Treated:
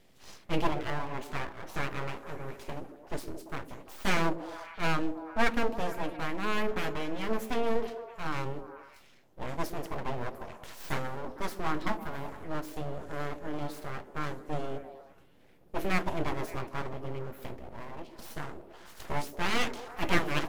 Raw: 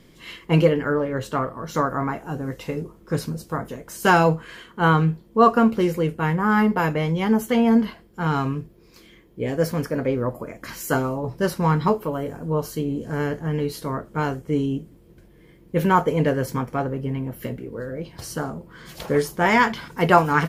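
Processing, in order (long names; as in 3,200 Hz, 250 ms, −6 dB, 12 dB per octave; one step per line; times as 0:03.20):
full-wave rectification
echo through a band-pass that steps 114 ms, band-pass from 290 Hz, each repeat 0.7 octaves, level −6 dB
level −8.5 dB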